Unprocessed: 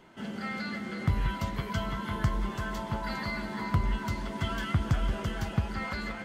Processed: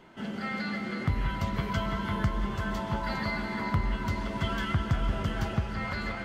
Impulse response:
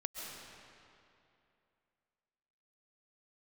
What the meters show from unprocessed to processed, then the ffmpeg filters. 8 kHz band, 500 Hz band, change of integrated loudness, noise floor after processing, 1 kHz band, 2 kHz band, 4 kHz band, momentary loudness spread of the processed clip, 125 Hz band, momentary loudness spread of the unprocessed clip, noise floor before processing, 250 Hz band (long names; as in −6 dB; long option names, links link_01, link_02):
−2.0 dB, +2.0 dB, +1.0 dB, −37 dBFS, +2.0 dB, +2.0 dB, +1.0 dB, 4 LU, +0.5 dB, 5 LU, −40 dBFS, +2.0 dB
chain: -filter_complex "[0:a]alimiter=limit=-18.5dB:level=0:latency=1:release=487,asplit=2[link_01][link_02];[1:a]atrim=start_sample=2205,lowpass=6200[link_03];[link_02][link_03]afir=irnorm=-1:irlink=0,volume=-2dB[link_04];[link_01][link_04]amix=inputs=2:normalize=0,volume=-2dB"